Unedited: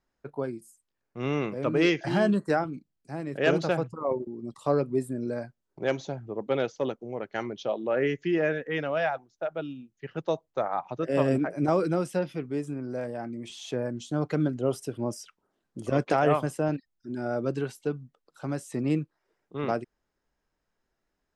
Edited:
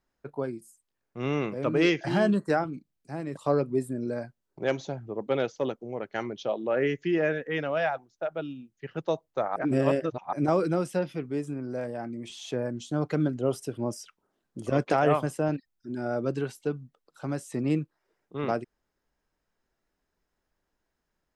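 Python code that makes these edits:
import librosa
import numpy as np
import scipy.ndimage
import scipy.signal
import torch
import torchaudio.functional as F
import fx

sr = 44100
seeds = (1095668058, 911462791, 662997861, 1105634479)

y = fx.edit(x, sr, fx.cut(start_s=3.37, length_s=1.2),
    fx.reverse_span(start_s=10.76, length_s=0.77), tone=tone)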